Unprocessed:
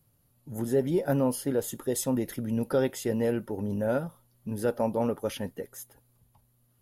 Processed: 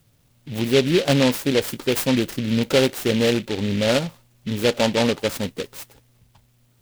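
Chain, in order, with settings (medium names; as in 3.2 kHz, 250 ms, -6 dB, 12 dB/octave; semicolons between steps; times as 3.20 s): delay time shaken by noise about 2.7 kHz, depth 0.13 ms; trim +8 dB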